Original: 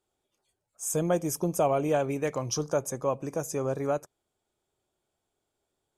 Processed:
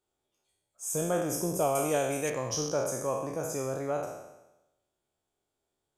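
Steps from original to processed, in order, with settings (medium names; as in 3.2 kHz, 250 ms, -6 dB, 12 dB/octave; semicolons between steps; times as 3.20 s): spectral sustain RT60 0.98 s; 1.75–2.30 s: peaking EQ 9.3 kHz +15 dB 2.1 oct; trim -5 dB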